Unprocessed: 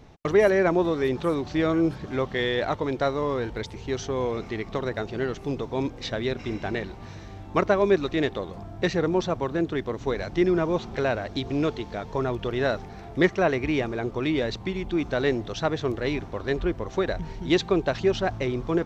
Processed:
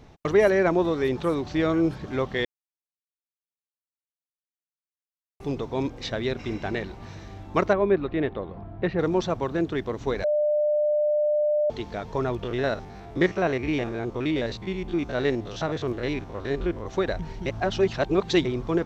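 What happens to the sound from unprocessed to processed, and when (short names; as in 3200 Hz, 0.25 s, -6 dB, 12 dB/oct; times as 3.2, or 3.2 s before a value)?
2.45–5.4 mute
7.73–8.99 air absorption 440 m
10.24–11.7 bleep 598 Hz -19.5 dBFS
12.43–16.86 stepped spectrum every 50 ms
17.46–18.45 reverse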